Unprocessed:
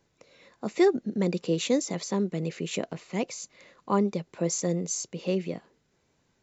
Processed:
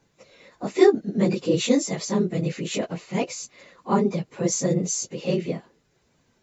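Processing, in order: phase scrambler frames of 50 ms; gain +4.5 dB

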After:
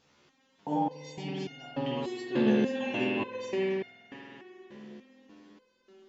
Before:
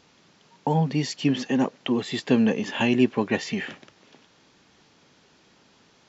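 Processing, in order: tape echo 0.394 s, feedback 77%, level -15 dB, low-pass 1100 Hz; spring tank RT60 2.9 s, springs 47 ms, chirp 50 ms, DRR -4 dB; stepped resonator 3.4 Hz 72–710 Hz

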